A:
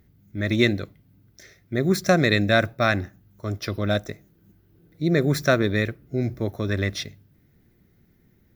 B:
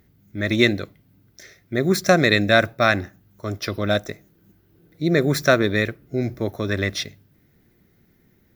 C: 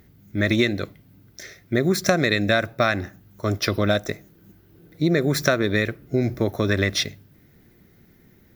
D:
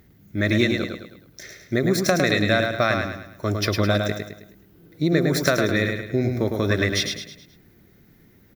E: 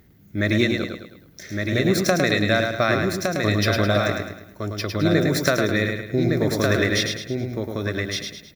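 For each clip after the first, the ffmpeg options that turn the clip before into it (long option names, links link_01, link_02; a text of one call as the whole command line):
ffmpeg -i in.wav -af "lowshelf=frequency=200:gain=-6.5,volume=4dB" out.wav
ffmpeg -i in.wav -af "acompressor=threshold=-21dB:ratio=6,volume=5dB" out.wav
ffmpeg -i in.wav -af "aecho=1:1:106|212|318|424|530:0.562|0.236|0.0992|0.0417|0.0175,volume=-1dB" out.wav
ffmpeg -i in.wav -af "aecho=1:1:1162:0.596" out.wav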